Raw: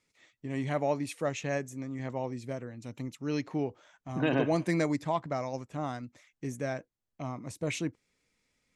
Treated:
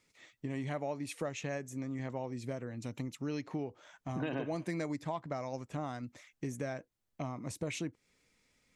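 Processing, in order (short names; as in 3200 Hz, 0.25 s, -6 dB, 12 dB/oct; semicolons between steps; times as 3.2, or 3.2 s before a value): compressor 4:1, threshold -39 dBFS, peak gain reduction 14.5 dB; gain +3.5 dB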